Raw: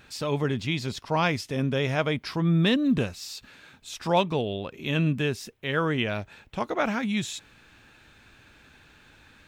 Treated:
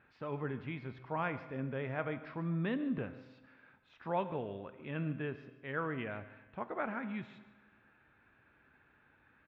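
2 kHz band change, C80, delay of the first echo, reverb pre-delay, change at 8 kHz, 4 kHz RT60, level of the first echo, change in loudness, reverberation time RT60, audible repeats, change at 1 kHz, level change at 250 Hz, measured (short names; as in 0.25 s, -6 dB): -12.0 dB, 13.0 dB, 0.145 s, 8 ms, under -40 dB, 1.2 s, -18.0 dB, -12.5 dB, 1.3 s, 1, -10.5 dB, -12.5 dB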